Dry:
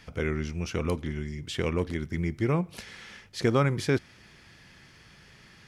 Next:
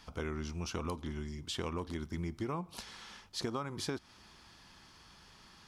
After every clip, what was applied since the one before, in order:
graphic EQ with 10 bands 125 Hz −9 dB, 500 Hz −6 dB, 1,000 Hz +8 dB, 2,000 Hz −10 dB, 4,000 Hz +3 dB
downward compressor 12 to 1, threshold −31 dBFS, peak gain reduction 11.5 dB
level −2 dB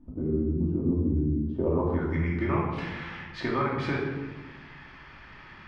low-pass filter sweep 280 Hz → 2,100 Hz, 0:01.37–0:02.19
rectangular room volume 750 cubic metres, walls mixed, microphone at 2.6 metres
level +3 dB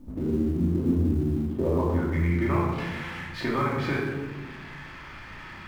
mu-law and A-law mismatch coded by mu
on a send: flutter between parallel walls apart 6 metres, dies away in 0.26 s

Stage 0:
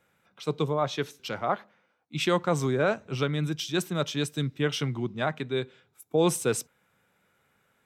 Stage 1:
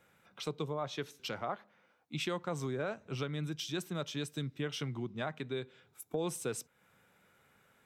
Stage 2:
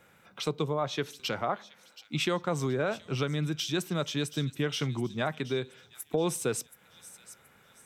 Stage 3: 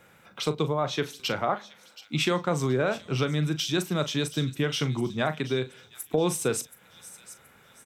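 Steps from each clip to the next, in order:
downward compressor 2.5 to 1, threshold −41 dBFS, peak gain reduction 15 dB; level +1.5 dB
delay with a high-pass on its return 726 ms, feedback 37%, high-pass 3,300 Hz, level −13 dB; level +7 dB
double-tracking delay 39 ms −12 dB; level +3.5 dB

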